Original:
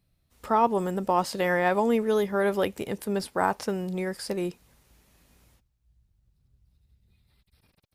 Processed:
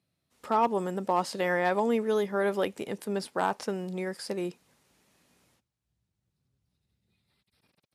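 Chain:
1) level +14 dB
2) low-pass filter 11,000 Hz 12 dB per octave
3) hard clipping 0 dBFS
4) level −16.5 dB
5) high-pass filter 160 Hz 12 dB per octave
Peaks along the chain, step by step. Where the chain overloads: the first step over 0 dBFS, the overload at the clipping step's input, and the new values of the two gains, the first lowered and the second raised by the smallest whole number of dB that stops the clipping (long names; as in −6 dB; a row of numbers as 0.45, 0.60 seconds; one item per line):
+4.5, +4.5, 0.0, −16.5, −13.5 dBFS
step 1, 4.5 dB
step 1 +9 dB, step 4 −11.5 dB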